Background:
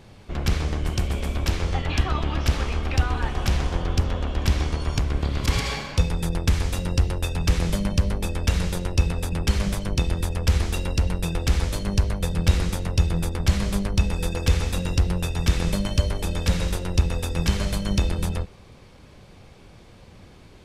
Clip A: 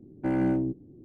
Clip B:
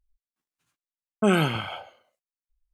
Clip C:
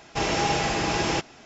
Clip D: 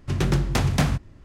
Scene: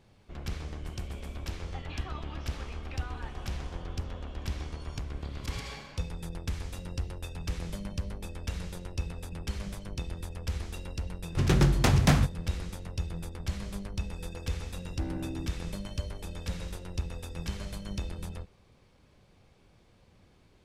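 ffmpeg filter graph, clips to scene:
-filter_complex "[0:a]volume=-13.5dB[a];[1:a]acompressor=threshold=-28dB:ratio=6:attack=3.2:release=140:knee=1:detection=peak[b];[4:a]atrim=end=1.24,asetpts=PTS-STARTPTS,volume=-1dB,afade=t=in:d=0.004:c=hsin,afade=t=out:st=1.236:d=0.004:c=hsin,adelay=11290[c];[b]atrim=end=1.04,asetpts=PTS-STARTPTS,volume=-6.5dB,afade=t=in:d=0.004:c=hsin,afade=t=out:st=1.036:d=0.004:c=hsin,adelay=14750[d];[a][c][d]amix=inputs=3:normalize=0"

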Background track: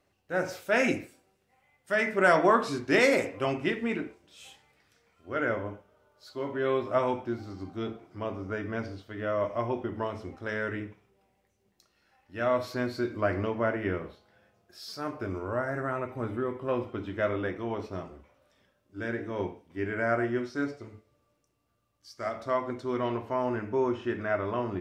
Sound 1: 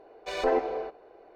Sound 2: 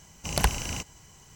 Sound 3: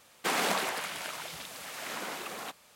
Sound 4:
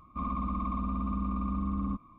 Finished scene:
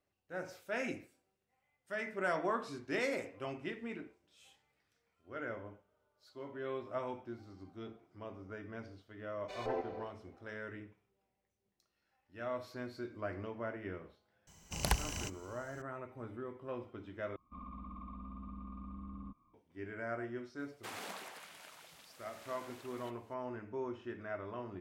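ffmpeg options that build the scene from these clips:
-filter_complex "[0:a]volume=-13dB,asplit=2[a][b];[a]atrim=end=17.364[c];[4:a]atrim=end=2.18,asetpts=PTS-STARTPTS,volume=-15.5dB[d];[b]atrim=start=19.536[e];[1:a]atrim=end=1.35,asetpts=PTS-STARTPTS,volume=-13dB,afade=t=in:d=0.004:c=hsin,afade=t=out:st=1.346:d=0.004:c=hsin,adelay=406602S[f];[2:a]atrim=end=1.35,asetpts=PTS-STARTPTS,volume=-8dB,afade=t=in:d=0.004:c=hsin,afade=t=out:st=1.346:d=0.004:c=hsin,adelay=14470[g];[3:a]atrim=end=2.75,asetpts=PTS-STARTPTS,volume=-16.5dB,afade=t=in:d=0.004:c=hsin,afade=t=out:st=2.746:d=0.004:c=hsin,adelay=20590[h];[c][d]acrossfade=d=0.004:c1=hsin:c2=hsin[i];[i][e]acrossfade=d=0.004:c1=hsin:c2=hsin[j];[j][f][g][h]amix=inputs=4:normalize=0"

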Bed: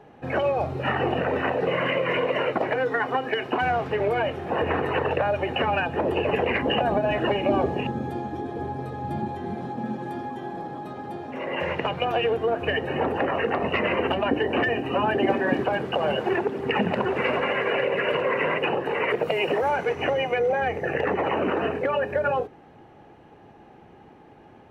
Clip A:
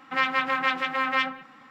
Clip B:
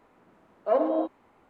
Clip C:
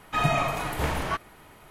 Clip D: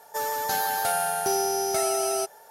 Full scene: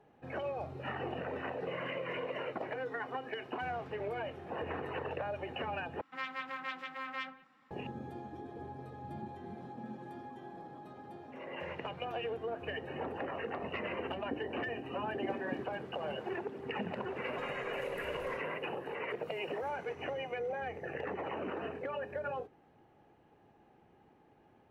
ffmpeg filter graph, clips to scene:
-filter_complex "[0:a]volume=-14.5dB[a];[3:a]acompressor=threshold=-29dB:ratio=6:attack=3.2:release=140:knee=1:detection=peak[b];[a]asplit=2[c][d];[c]atrim=end=6.014[e];[1:a]atrim=end=1.7,asetpts=PTS-STARTPTS,volume=-16dB[f];[d]atrim=start=7.706[g];[b]atrim=end=1.7,asetpts=PTS-STARTPTS,volume=-17.5dB,afade=t=in:d=0.004:c=hsin,afade=t=out:st=1.696:d=0.004:c=hsin,adelay=17250[h];[e][f]acrossfade=d=0.004:c1=hsin:c2=hsin[i];[i][g]acrossfade=d=0.004:c1=hsin:c2=hsin[j];[j][h]amix=inputs=2:normalize=0"

